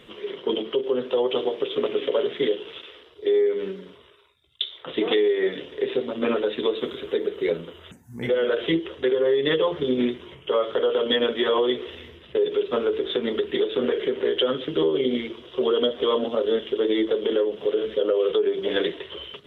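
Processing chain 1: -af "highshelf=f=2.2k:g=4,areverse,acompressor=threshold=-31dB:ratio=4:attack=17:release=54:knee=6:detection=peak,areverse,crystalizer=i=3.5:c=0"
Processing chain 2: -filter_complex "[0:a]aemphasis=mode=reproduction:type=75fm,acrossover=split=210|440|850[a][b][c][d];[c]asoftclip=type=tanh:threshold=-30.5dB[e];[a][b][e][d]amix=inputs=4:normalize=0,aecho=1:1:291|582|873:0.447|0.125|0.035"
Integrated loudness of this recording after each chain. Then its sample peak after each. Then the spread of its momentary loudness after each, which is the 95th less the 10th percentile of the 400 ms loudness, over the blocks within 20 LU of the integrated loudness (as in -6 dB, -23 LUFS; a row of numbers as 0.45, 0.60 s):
-29.0, -25.0 LUFS; -11.0, -11.5 dBFS; 6, 9 LU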